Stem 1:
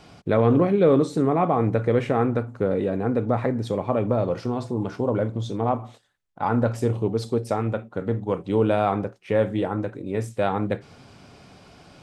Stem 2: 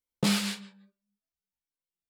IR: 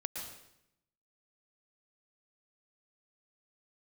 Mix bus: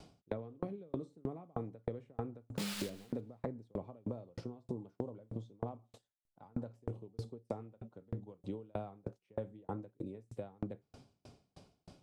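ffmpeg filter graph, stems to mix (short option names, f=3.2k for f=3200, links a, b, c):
-filter_complex "[0:a]acrossover=split=200|2700[a][b][c];[a]acompressor=threshold=-31dB:ratio=4[d];[b]acompressor=threshold=-24dB:ratio=4[e];[c]acompressor=threshold=-55dB:ratio=4[f];[d][e][f]amix=inputs=3:normalize=0,equalizer=f=1.7k:w=0.79:g=-10.5,aeval=exprs='val(0)*pow(10,-40*if(lt(mod(3.2*n/s,1),2*abs(3.2)/1000),1-mod(3.2*n/s,1)/(2*abs(3.2)/1000),(mod(3.2*n/s,1)-2*abs(3.2)/1000)/(1-2*abs(3.2)/1000))/20)':c=same,volume=-1.5dB[g];[1:a]acrusher=bits=6:dc=4:mix=0:aa=0.000001,adelay=2350,volume=-9dB,asplit=2[h][i];[i]volume=-17.5dB[j];[2:a]atrim=start_sample=2205[k];[j][k]afir=irnorm=-1:irlink=0[l];[g][h][l]amix=inputs=3:normalize=0,acompressor=threshold=-35dB:ratio=6"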